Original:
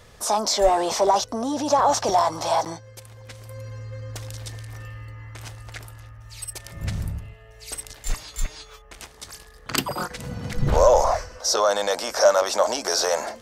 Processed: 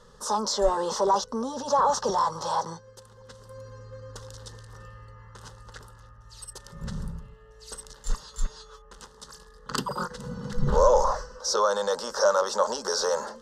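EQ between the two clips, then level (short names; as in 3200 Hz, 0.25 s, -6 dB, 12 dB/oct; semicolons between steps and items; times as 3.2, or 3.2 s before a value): air absorption 64 m; fixed phaser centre 460 Hz, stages 8; 0.0 dB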